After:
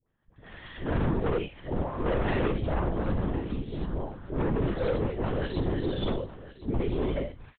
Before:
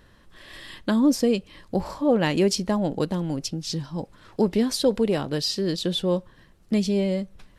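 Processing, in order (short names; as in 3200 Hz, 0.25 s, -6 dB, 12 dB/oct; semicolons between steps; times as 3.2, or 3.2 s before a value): phase scrambler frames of 0.2 s; gate -47 dBFS, range -22 dB; LPF 2400 Hz 12 dB/oct; 5.07–5.52 negative-ratio compressor -27 dBFS, ratio -0.5; dispersion highs, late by 83 ms, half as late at 960 Hz; 6.11–7.17 fixed phaser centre 310 Hz, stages 4; hard clip -24.5 dBFS, distortion -6 dB; LPC vocoder at 8 kHz whisper; echo 1.055 s -16 dB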